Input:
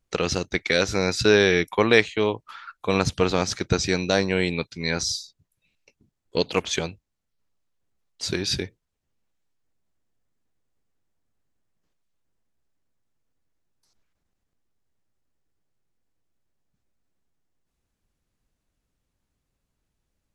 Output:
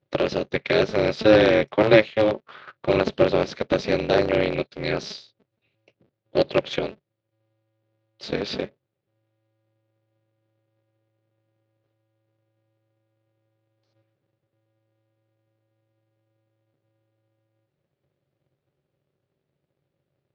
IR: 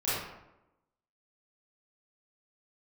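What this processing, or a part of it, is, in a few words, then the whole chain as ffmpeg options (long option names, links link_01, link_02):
ring modulator pedal into a guitar cabinet: -af "aeval=exprs='val(0)*sgn(sin(2*PI*110*n/s))':channel_layout=same,highpass=91,equalizer=frequency=140:width_type=q:width=4:gain=8,equalizer=frequency=390:width_type=q:width=4:gain=8,equalizer=frequency=560:width_type=q:width=4:gain=9,equalizer=frequency=1000:width_type=q:width=4:gain=-3,lowpass=frequency=4200:width=0.5412,lowpass=frequency=4200:width=1.3066,volume=-2.5dB"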